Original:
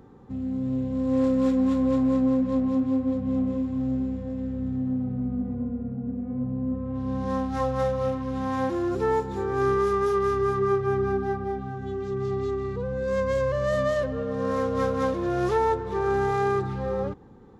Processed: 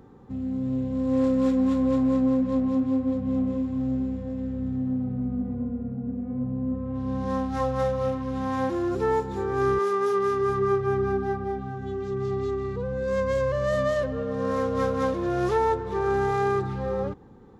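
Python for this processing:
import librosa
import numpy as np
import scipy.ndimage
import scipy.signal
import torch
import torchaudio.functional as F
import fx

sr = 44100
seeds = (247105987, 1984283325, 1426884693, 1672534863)

y = fx.highpass(x, sr, hz=fx.line((9.78, 360.0), (10.48, 99.0)), slope=12, at=(9.78, 10.48), fade=0.02)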